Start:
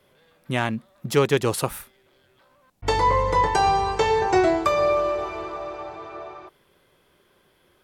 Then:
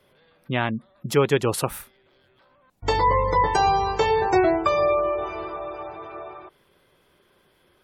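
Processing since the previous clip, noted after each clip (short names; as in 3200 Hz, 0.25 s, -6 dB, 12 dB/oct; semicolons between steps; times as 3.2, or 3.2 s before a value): spectral gate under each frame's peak -30 dB strong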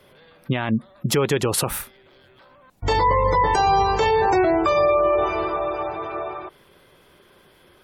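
limiter -19 dBFS, peak gain reduction 11 dB; gain +8 dB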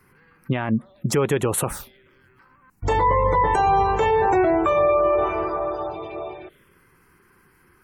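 envelope phaser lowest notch 580 Hz, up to 4900 Hz, full sweep at -18.5 dBFS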